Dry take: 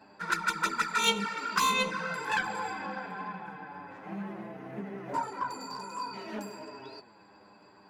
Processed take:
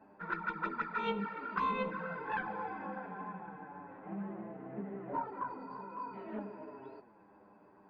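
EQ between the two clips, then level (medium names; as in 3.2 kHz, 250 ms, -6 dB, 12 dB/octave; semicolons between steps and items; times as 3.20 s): distance through air 210 m; tape spacing loss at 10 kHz 44 dB; peaking EQ 110 Hz -5.5 dB 1.1 oct; 0.0 dB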